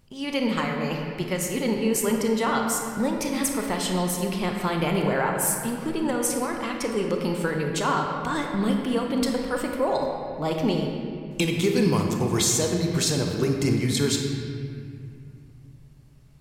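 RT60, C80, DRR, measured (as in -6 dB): 2.3 s, 3.5 dB, 1.5 dB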